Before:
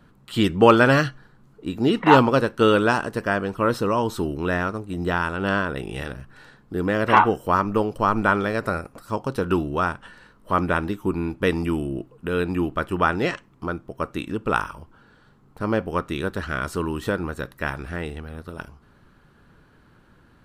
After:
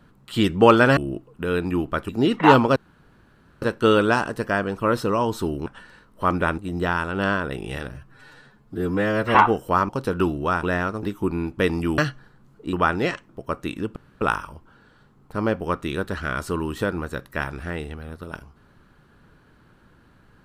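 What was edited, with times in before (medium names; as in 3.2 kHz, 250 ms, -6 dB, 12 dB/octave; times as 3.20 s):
0.97–1.72 s: swap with 11.81–12.93 s
2.39 s: insert room tone 0.86 s
4.43–4.83 s: swap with 9.94–10.86 s
6.19–7.13 s: stretch 1.5×
7.67–9.20 s: delete
13.49–13.80 s: delete
14.47 s: insert room tone 0.25 s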